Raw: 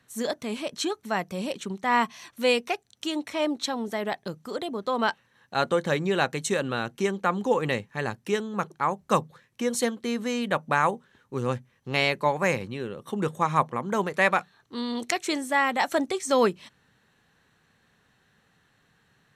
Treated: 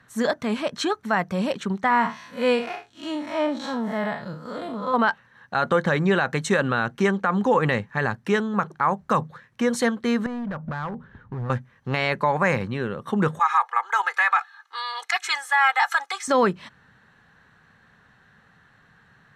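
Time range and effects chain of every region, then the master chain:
1.90–4.94 s: spectral blur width 124 ms + comb of notches 390 Hz
10.26–11.50 s: RIAA curve playback + compression, threshold -33 dBFS + hard clipper -34 dBFS
13.39–16.28 s: high-pass 910 Hz 24 dB/octave + comb 2.4 ms, depth 94%
whole clip: FFT filter 210 Hz 0 dB, 330 Hz -5 dB, 1.6 kHz +4 dB, 2.5 kHz -5 dB, 4.2 kHz -6 dB, 13 kHz -14 dB; peak limiter -18.5 dBFS; trim +8 dB

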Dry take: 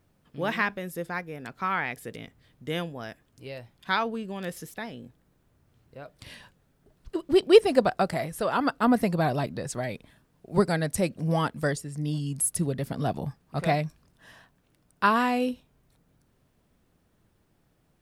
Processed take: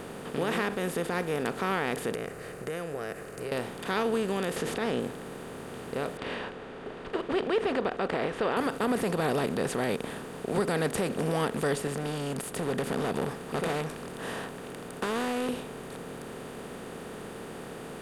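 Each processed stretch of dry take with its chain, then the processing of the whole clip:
2.14–3.52 s: static phaser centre 920 Hz, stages 6 + compression 3:1, threshold -52 dBFS
4.56–5.00 s: low-pass 5.3 kHz + level flattener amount 50%
6.17–8.57 s: low-pass 3.1 kHz 24 dB/octave + peaking EQ 150 Hz -14 dB 1.3 oct
11.87–15.49 s: compression 3:1, threshold -34 dBFS + overload inside the chain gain 34.5 dB
whole clip: spectral levelling over time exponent 0.4; peak limiter -11.5 dBFS; trim -7 dB

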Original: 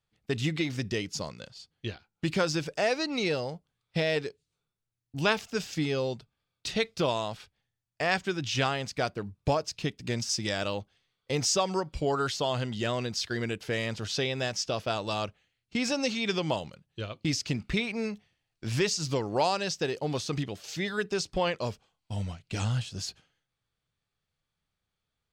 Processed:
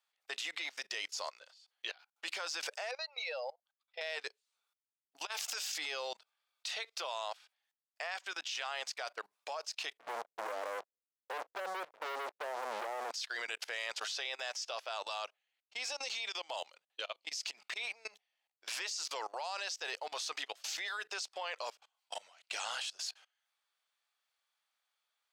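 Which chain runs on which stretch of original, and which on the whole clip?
2.91–4.01 s: spectral contrast enhancement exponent 1.6 + brick-wall FIR high-pass 470 Hz
5.25–5.78 s: treble shelf 3.9 kHz +10 dB + compressor with a negative ratio -36 dBFS
9.97–13.11 s: steep low-pass 520 Hz 48 dB/octave + waveshaping leveller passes 5
15.25–18.66 s: peaking EQ 1.4 kHz -4.5 dB 1.2 oct + compression 16:1, threshold -30 dBFS + tape noise reduction on one side only decoder only
whole clip: high-pass 690 Hz 24 dB/octave; level held to a coarse grid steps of 23 dB; trim +6.5 dB

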